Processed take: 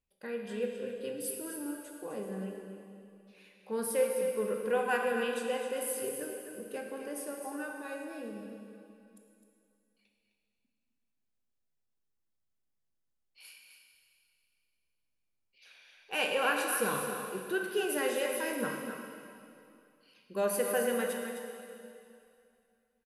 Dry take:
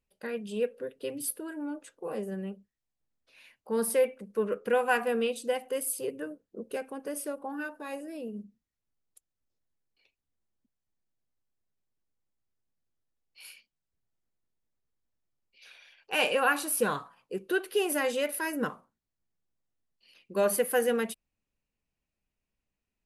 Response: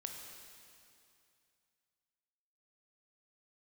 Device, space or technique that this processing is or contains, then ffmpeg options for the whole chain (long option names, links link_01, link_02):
cave: -filter_complex "[0:a]aecho=1:1:258:0.355[link_01];[1:a]atrim=start_sample=2205[link_02];[link_01][link_02]afir=irnorm=-1:irlink=0,volume=-1dB"